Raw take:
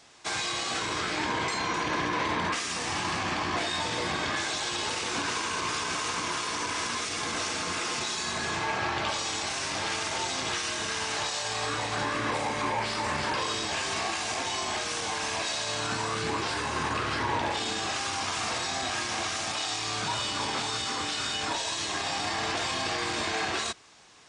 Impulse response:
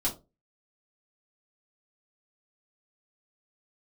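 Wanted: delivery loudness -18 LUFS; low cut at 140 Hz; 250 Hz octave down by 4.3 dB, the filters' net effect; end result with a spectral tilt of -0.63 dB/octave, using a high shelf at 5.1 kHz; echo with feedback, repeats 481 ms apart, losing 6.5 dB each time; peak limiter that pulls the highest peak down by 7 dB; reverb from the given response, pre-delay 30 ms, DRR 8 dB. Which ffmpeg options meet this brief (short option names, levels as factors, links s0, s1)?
-filter_complex "[0:a]highpass=140,equalizer=f=250:t=o:g=-5.5,highshelf=f=5100:g=5.5,alimiter=limit=0.0708:level=0:latency=1,aecho=1:1:481|962|1443|1924|2405|2886:0.473|0.222|0.105|0.0491|0.0231|0.0109,asplit=2[s0][s1];[1:a]atrim=start_sample=2205,adelay=30[s2];[s1][s2]afir=irnorm=-1:irlink=0,volume=0.2[s3];[s0][s3]amix=inputs=2:normalize=0,volume=3.55"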